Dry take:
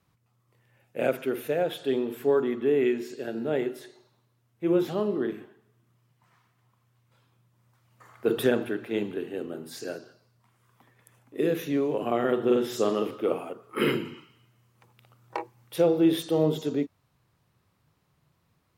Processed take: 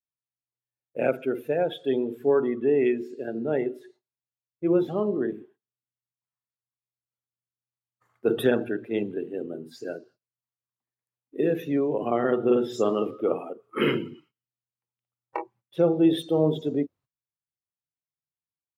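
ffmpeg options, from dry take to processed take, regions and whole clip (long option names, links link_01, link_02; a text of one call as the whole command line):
ffmpeg -i in.wav -filter_complex "[0:a]asettb=1/sr,asplit=3[link_01][link_02][link_03];[link_01]atrim=end=15.424[link_04];[link_02]atrim=start=15.42:end=16,asetpts=PTS-STARTPTS,afade=type=in:duration=0.004:curve=qsin,afade=type=out:start_time=0.576:duration=0.004:curve=qsin,highshelf=frequency=6000:gain=-10.5,aecho=1:1:5.2:0.42,atrim=end_sample=25578[link_05];[link_03]atrim=start=15.996[link_06];[link_04][link_05]acrossfade=duration=0.004:curve1=hsin:curve2=qsin[link_07];[link_07][link_06]acrossfade=duration=0.004:curve1=qsin:curve2=hsin,agate=range=-23dB:threshold=-53dB:ratio=16:detection=peak,afftdn=noise_reduction=16:noise_floor=-38,volume=1.5dB" out.wav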